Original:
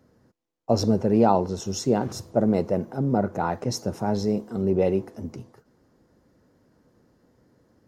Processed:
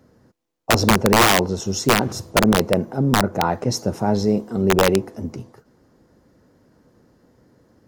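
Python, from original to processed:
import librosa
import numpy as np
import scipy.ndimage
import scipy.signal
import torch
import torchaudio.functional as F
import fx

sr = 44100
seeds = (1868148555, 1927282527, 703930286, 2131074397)

y = (np.mod(10.0 ** (12.5 / 20.0) * x + 1.0, 2.0) - 1.0) / 10.0 ** (12.5 / 20.0)
y = y * 10.0 ** (5.5 / 20.0)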